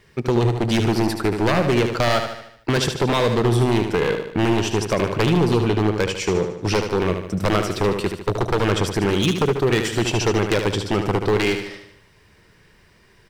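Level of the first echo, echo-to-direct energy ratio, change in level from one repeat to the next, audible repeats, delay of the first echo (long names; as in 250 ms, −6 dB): −7.0 dB, −5.5 dB, −6.0 dB, 5, 75 ms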